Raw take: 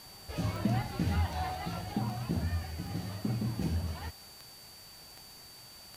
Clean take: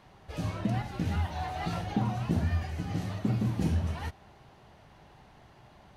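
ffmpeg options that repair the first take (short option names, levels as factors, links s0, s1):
-af "adeclick=t=4,bandreject=f=4600:w=30,afwtdn=0.002,asetnsamples=n=441:p=0,asendcmd='1.55 volume volume 4.5dB',volume=1"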